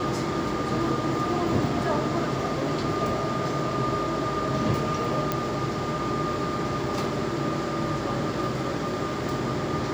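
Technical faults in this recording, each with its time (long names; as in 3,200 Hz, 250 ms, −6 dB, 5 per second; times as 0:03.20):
0:05.32: click −10 dBFS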